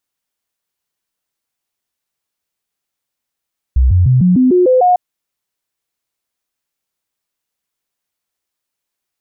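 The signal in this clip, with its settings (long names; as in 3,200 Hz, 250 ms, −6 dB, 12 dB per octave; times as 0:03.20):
stepped sweep 63.8 Hz up, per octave 2, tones 8, 0.15 s, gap 0.00 s −6.5 dBFS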